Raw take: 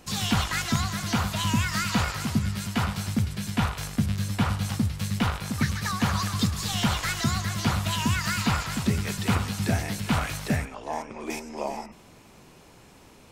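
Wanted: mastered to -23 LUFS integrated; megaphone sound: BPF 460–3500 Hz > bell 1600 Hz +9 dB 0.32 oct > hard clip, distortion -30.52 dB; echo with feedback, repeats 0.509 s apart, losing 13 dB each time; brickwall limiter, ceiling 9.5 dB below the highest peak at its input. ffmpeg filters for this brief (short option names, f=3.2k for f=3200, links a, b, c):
-af "alimiter=limit=-19dB:level=0:latency=1,highpass=460,lowpass=3.5k,equalizer=f=1.6k:t=o:w=0.32:g=9,aecho=1:1:509|1018|1527:0.224|0.0493|0.0108,asoftclip=type=hard:threshold=-20.5dB,volume=9dB"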